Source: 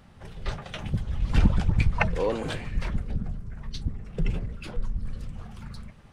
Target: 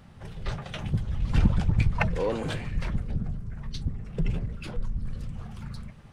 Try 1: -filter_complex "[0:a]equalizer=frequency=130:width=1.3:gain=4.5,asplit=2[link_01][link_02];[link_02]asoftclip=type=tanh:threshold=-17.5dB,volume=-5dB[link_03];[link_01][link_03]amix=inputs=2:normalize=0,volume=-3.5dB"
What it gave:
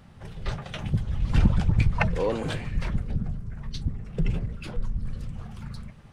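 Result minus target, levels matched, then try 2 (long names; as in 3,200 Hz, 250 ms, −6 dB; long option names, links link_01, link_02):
soft clipping: distortion −7 dB
-filter_complex "[0:a]equalizer=frequency=130:width=1.3:gain=4.5,asplit=2[link_01][link_02];[link_02]asoftclip=type=tanh:threshold=-29.5dB,volume=-5dB[link_03];[link_01][link_03]amix=inputs=2:normalize=0,volume=-3.5dB"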